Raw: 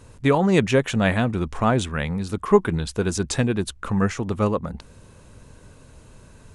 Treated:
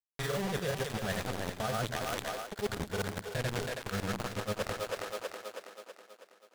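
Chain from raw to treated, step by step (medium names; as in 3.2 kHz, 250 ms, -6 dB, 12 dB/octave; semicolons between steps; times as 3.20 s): static phaser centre 1.5 kHz, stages 8; bit crusher 4-bit; granulator, grains 20 per s, pitch spread up and down by 0 st; two-band feedback delay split 320 Hz, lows 101 ms, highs 324 ms, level -10 dB; reverse; compression 6:1, threshold -36 dBFS, peak gain reduction 19 dB; reverse; trim +4 dB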